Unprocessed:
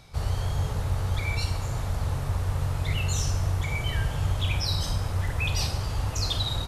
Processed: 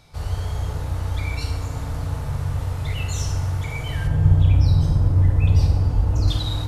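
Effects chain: 4.07–6.28 tilt shelf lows +9.5 dB, about 750 Hz; FDN reverb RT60 2.1 s, low-frequency decay 1.55×, high-frequency decay 0.35×, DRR 2.5 dB; gain -1.5 dB

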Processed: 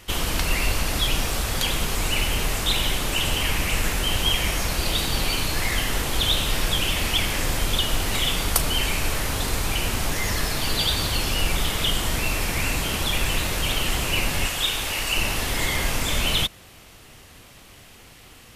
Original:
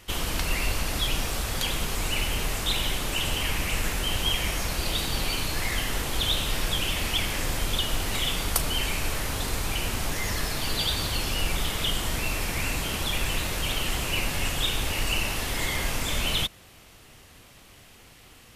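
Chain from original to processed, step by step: 14.46–15.17 low shelf 400 Hz -9 dB; gain +4 dB

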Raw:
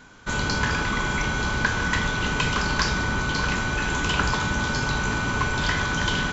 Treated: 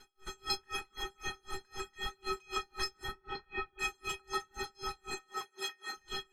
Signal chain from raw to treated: CVSD 64 kbps; 3.11–3.79 air absorption 310 m; vocal rider within 3 dB 0.5 s; reverb removal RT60 1.7 s; 5.14–5.97 HPF 300 Hz 12 dB/oct; metallic resonator 380 Hz, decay 0.62 s, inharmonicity 0.03; tape echo 0.15 s, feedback 88%, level -9.5 dB, low-pass 2300 Hz; dB-linear tremolo 3.9 Hz, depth 36 dB; gain +15.5 dB

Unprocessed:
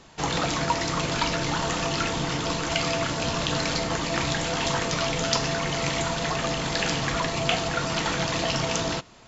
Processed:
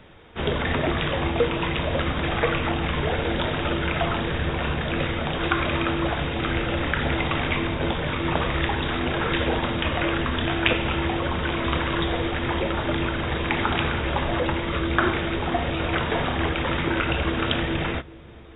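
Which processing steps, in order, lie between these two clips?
dark delay 0.201 s, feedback 76%, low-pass 960 Hz, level -23 dB; speed mistake 15 ips tape played at 7.5 ips; gain +2 dB

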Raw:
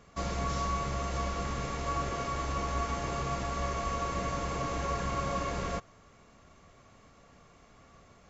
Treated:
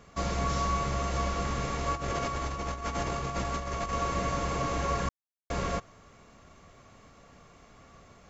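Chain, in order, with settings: 1.95–3.93 negative-ratio compressor -35 dBFS, ratio -0.5; 5.09–5.5 mute; gain +3 dB

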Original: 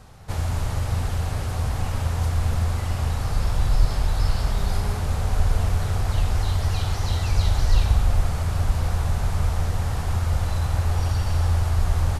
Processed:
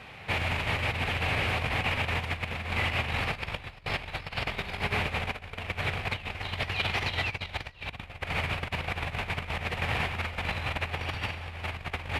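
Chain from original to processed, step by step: EQ curve 1400 Hz 0 dB, 2400 Hz +15 dB, 6100 Hz -12 dB; negative-ratio compressor -24 dBFS, ratio -0.5; HPF 270 Hz 6 dB/oct

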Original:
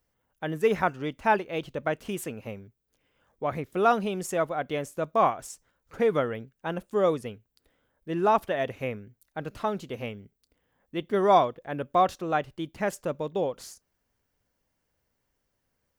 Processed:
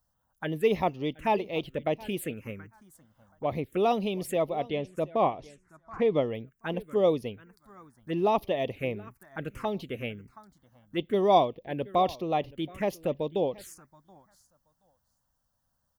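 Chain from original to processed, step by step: 4.62–6.28 air absorption 120 m; feedback echo 0.727 s, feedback 15%, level -20.5 dB; envelope phaser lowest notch 390 Hz, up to 1500 Hz, full sweep at -27 dBFS; harmonic-percussive split percussive +3 dB

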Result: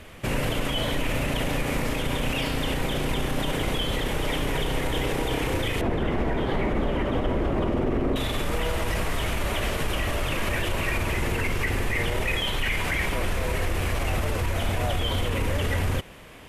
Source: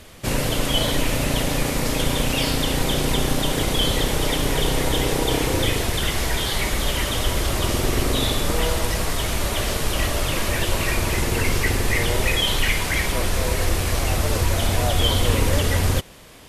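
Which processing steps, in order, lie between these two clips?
5.81–8.16 EQ curve 100 Hz 0 dB, 250 Hz +9 dB, 770 Hz +3 dB, 12000 Hz -23 dB; limiter -16.5 dBFS, peak gain reduction 11.5 dB; resonant high shelf 3400 Hz -6.5 dB, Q 1.5

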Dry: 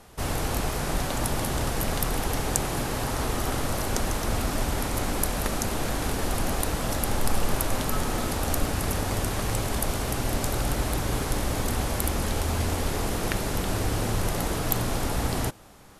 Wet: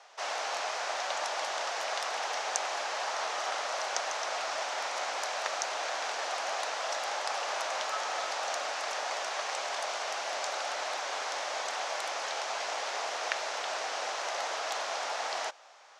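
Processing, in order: elliptic band-pass 630–6200 Hz, stop band 70 dB

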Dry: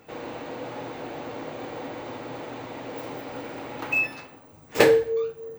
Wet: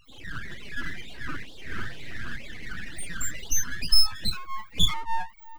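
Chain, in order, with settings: dynamic EQ 350 Hz, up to +3 dB, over -39 dBFS, Q 0.71; LFO high-pass sine 2.1 Hz 730–1700 Hz; loudest bins only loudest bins 4; full-wave rectifier; echoes that change speed 0.217 s, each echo +3 st, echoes 3, each echo -6 dB; 1.72–2.36 doubler 47 ms -6 dB; gain +6.5 dB

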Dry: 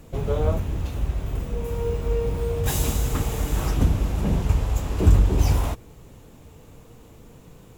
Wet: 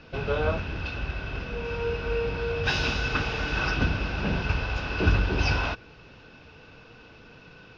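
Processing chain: elliptic low-pass 5200 Hz, stop band 40 dB; tilt +2 dB/oct; small resonant body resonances 1500/2600 Hz, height 17 dB, ringing for 40 ms; gain +1.5 dB

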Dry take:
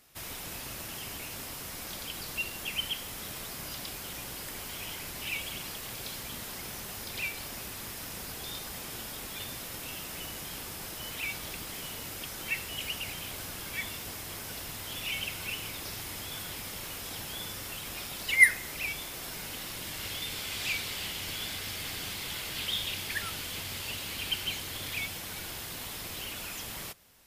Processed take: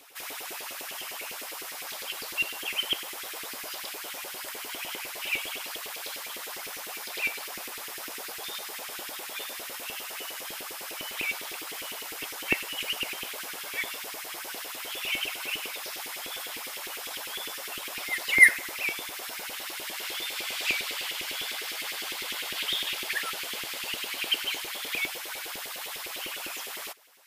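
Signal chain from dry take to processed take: LFO high-pass saw up 9.9 Hz 320–2700 Hz; reverse echo 0.295 s -17 dB; gain +1.5 dB

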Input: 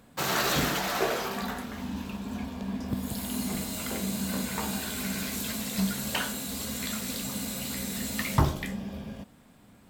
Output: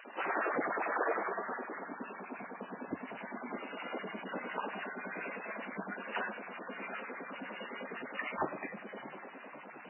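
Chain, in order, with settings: delta modulation 32 kbps, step -37.5 dBFS; on a send: diffused feedback echo 0.706 s, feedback 48%, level -15 dB; on the sum: LFO high-pass sine 9.8 Hz 320–1800 Hz; gain -5.5 dB; MP3 8 kbps 12000 Hz

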